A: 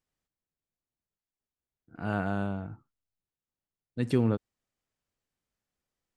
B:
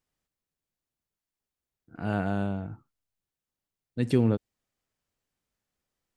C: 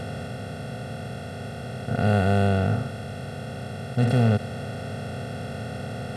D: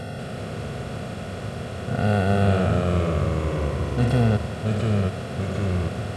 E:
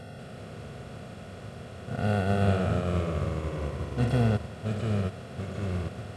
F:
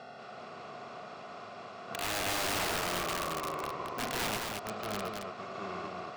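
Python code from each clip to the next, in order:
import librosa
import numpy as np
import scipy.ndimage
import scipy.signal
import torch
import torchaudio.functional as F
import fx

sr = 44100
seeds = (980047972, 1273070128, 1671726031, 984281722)

y1 = fx.dynamic_eq(x, sr, hz=1200.0, q=1.7, threshold_db=-51.0, ratio=4.0, max_db=-5)
y1 = y1 * librosa.db_to_amplitude(2.5)
y2 = fx.bin_compress(y1, sr, power=0.2)
y2 = y2 + 0.97 * np.pad(y2, (int(1.5 * sr / 1000.0), 0))[:len(y2)]
y2 = fx.hpss(y2, sr, part='percussive', gain_db=-9)
y3 = fx.echo_pitch(y2, sr, ms=189, semitones=-2, count=3, db_per_echo=-3.0)
y4 = fx.upward_expand(y3, sr, threshold_db=-29.0, expansion=1.5)
y4 = y4 * librosa.db_to_amplitude(-4.0)
y5 = fx.cabinet(y4, sr, low_hz=410.0, low_slope=12, high_hz=5900.0, hz=(510.0, 740.0, 1100.0, 1700.0, 3200.0), db=(-8, 4, 9, -5, -5))
y5 = (np.mod(10.0 ** (28.0 / 20.0) * y5 + 1.0, 2.0) - 1.0) / 10.0 ** (28.0 / 20.0)
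y5 = y5 + 10.0 ** (-4.0 / 20.0) * np.pad(y5, (int(220 * sr / 1000.0), 0))[:len(y5)]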